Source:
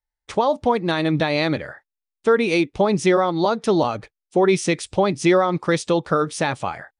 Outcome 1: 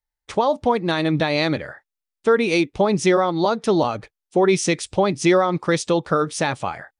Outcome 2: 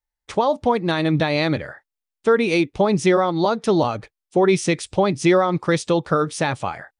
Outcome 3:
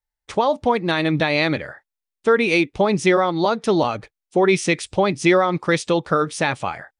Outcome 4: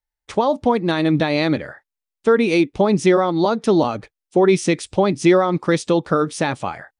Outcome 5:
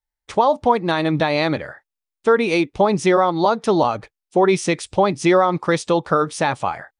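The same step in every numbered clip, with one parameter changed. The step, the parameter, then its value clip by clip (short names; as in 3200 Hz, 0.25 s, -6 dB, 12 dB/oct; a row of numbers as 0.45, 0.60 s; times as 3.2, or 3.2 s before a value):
dynamic EQ, frequency: 6200, 100, 2300, 260, 920 Hz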